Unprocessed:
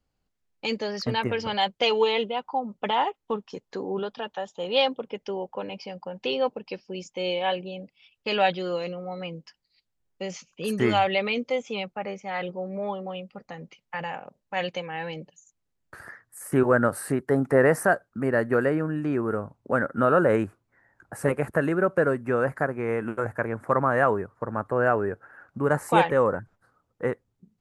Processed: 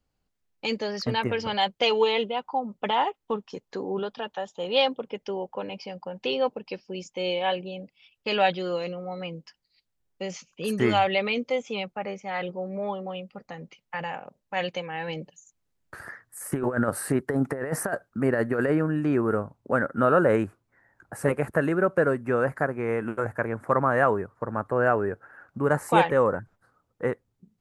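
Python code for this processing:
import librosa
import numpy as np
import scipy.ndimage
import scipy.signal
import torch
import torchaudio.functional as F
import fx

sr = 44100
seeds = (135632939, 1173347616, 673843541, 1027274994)

y = fx.over_compress(x, sr, threshold_db=-23.0, ratio=-0.5, at=(15.08, 19.43))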